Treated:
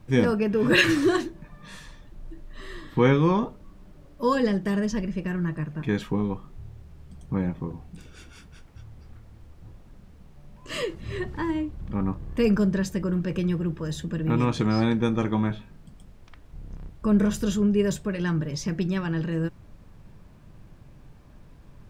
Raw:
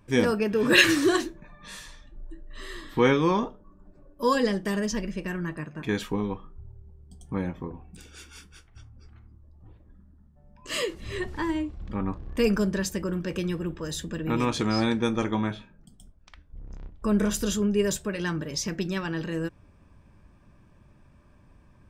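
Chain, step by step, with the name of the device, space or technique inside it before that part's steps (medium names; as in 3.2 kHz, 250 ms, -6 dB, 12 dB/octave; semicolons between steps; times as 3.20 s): car interior (peaking EQ 140 Hz +8 dB 0.95 oct; treble shelf 3.9 kHz -8 dB; brown noise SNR 22 dB)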